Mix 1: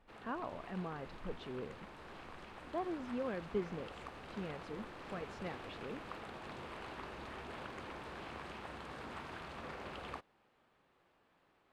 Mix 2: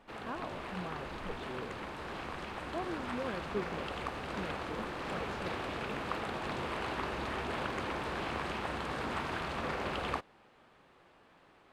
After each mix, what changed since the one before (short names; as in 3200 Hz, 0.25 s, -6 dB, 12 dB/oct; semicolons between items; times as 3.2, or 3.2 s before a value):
background +10.5 dB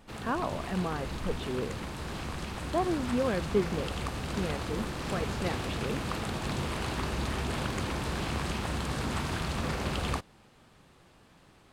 speech +10.0 dB; background: add tone controls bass +12 dB, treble +14 dB